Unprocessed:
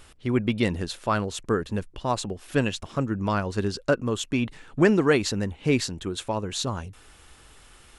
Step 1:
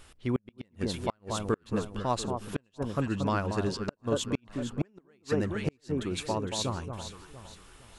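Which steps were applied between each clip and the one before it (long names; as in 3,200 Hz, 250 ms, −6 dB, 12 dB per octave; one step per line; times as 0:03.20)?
delay that swaps between a low-pass and a high-pass 230 ms, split 1,200 Hz, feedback 59%, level −6 dB
gate with flip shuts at −12 dBFS, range −40 dB
level −3.5 dB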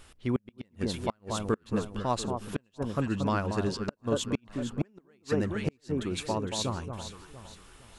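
parametric band 220 Hz +2 dB 0.28 octaves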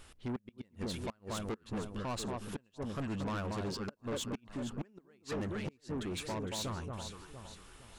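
soft clipping −31.5 dBFS, distortion −7 dB
level −2 dB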